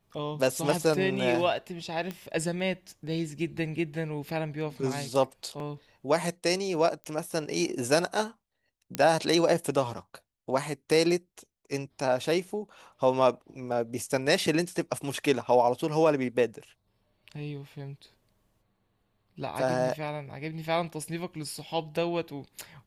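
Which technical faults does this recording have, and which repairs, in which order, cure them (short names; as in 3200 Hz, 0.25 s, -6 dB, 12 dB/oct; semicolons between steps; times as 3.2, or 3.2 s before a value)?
2.11 pop -21 dBFS
7.04 pop -27 dBFS
8.95 pop -13 dBFS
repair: de-click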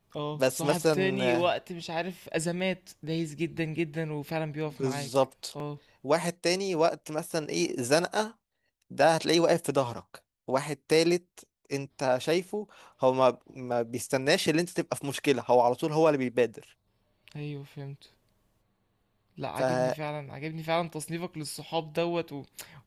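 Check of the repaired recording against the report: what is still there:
none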